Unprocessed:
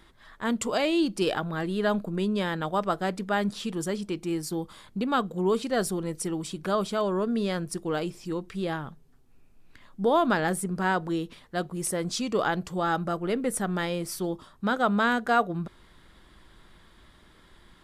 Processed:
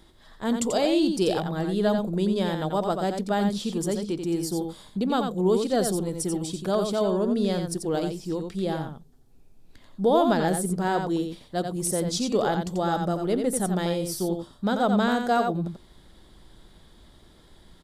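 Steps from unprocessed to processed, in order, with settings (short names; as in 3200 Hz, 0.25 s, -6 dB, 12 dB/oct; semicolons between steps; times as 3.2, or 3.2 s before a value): band shelf 1700 Hz -8 dB; on a send: echo 88 ms -6 dB; on the sum: gain +2.5 dB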